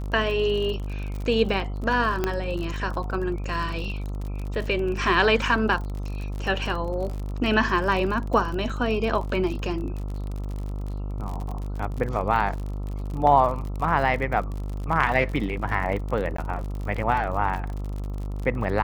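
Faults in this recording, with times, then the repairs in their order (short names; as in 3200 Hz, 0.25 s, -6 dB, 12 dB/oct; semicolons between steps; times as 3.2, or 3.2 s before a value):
buzz 50 Hz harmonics 27 -30 dBFS
crackle 47/s -31 dBFS
2.24 pop -10 dBFS
16.37–16.38 gap 14 ms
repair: de-click; de-hum 50 Hz, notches 27; interpolate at 16.37, 14 ms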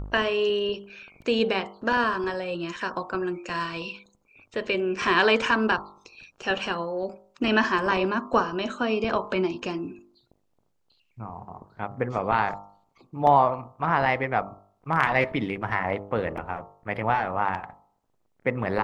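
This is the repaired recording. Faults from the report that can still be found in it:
2.24 pop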